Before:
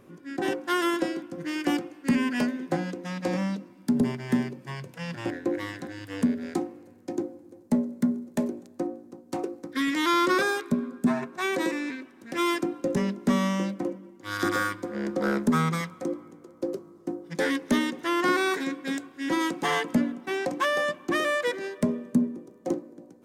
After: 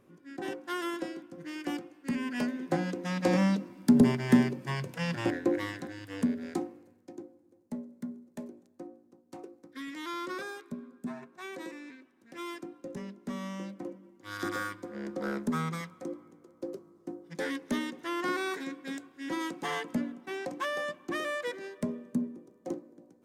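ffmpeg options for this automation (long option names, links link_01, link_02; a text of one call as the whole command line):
ffmpeg -i in.wav -af "volume=9.5dB,afade=type=in:start_time=2.2:duration=1.27:silence=0.251189,afade=type=out:start_time=4.98:duration=1.03:silence=0.421697,afade=type=out:start_time=6.65:duration=0.47:silence=0.316228,afade=type=in:start_time=13.3:duration=0.83:silence=0.473151" out.wav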